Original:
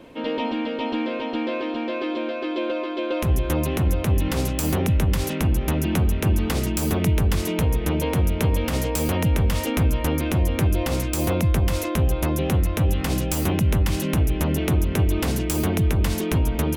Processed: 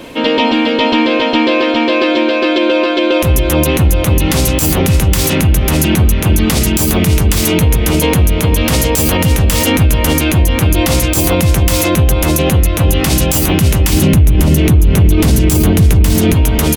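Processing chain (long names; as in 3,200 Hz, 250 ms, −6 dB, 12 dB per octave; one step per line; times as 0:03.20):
high-shelf EQ 2,400 Hz +9.5 dB
single-tap delay 545 ms −8 dB
downward compressor, threshold −19 dBFS, peak gain reduction 6.5 dB
0:13.93–0:16.34: low-shelf EQ 330 Hz +10.5 dB
boost into a limiter +14.5 dB
level −1 dB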